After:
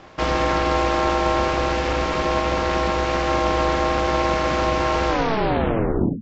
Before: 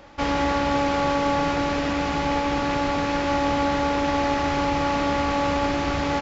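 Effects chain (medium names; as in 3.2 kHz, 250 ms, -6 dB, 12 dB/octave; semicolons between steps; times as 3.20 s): tape stop on the ending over 1.13 s; ring modulator 220 Hz; hum notches 50/100/150 Hz; trim +5.5 dB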